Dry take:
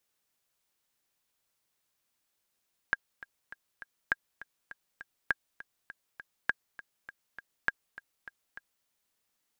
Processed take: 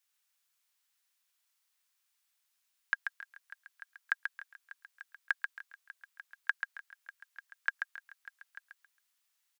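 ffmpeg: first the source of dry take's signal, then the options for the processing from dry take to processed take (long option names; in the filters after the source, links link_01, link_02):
-f lavfi -i "aevalsrc='pow(10,(-12.5-18*gte(mod(t,4*60/202),60/202))/20)*sin(2*PI*1620*mod(t,60/202))*exp(-6.91*mod(t,60/202)/0.03)':duration=5.94:sample_rate=44100"
-filter_complex "[0:a]highpass=1200,asplit=2[link_01][link_02];[link_02]aecho=0:1:136|272|408:0.531|0.133|0.0332[link_03];[link_01][link_03]amix=inputs=2:normalize=0"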